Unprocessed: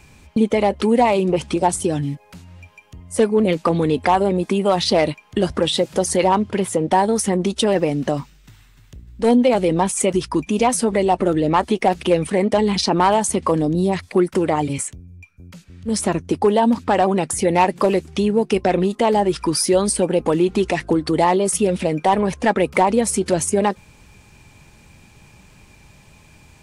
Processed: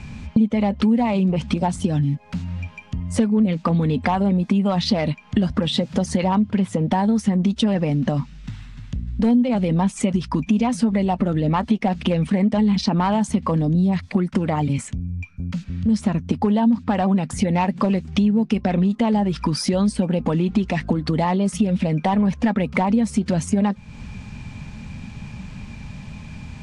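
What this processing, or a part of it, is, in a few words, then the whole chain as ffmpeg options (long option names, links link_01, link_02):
jukebox: -af "lowpass=5200,lowshelf=frequency=280:width_type=q:width=3:gain=6,acompressor=threshold=-28dB:ratio=3,volume=7dB"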